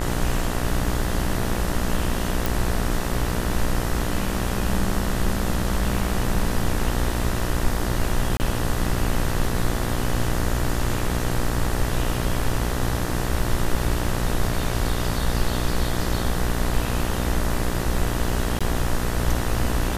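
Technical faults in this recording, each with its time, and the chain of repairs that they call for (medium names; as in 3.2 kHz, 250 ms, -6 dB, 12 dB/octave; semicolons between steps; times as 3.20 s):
buzz 60 Hz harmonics 33 -27 dBFS
2.46 s: pop
8.37–8.40 s: dropout 29 ms
18.59–18.61 s: dropout 16 ms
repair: de-click; de-hum 60 Hz, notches 33; interpolate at 8.37 s, 29 ms; interpolate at 18.59 s, 16 ms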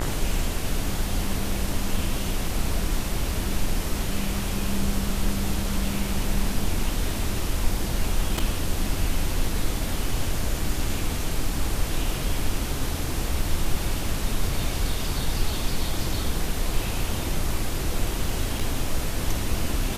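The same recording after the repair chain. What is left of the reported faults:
nothing left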